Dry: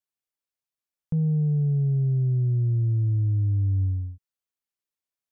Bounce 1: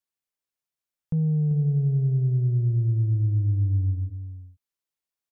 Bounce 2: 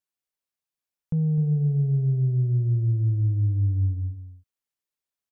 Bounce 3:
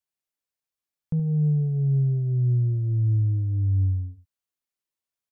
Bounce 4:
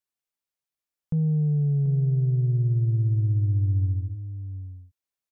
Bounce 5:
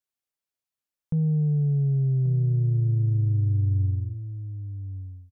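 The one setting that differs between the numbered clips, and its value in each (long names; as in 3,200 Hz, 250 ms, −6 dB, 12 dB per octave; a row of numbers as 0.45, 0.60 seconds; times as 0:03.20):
single-tap delay, delay time: 389, 257, 73, 735, 1,133 milliseconds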